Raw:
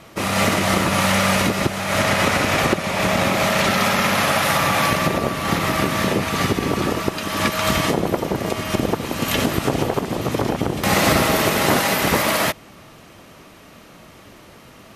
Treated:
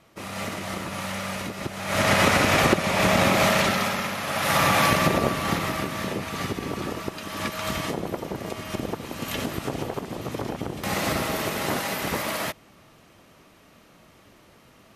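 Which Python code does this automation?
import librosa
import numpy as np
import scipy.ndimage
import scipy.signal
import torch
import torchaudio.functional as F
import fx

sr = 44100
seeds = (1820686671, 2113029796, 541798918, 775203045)

y = fx.gain(x, sr, db=fx.line((1.56, -13.5), (2.12, -1.0), (3.48, -1.0), (4.21, -12.5), (4.59, -1.5), (5.29, -1.5), (5.88, -9.5)))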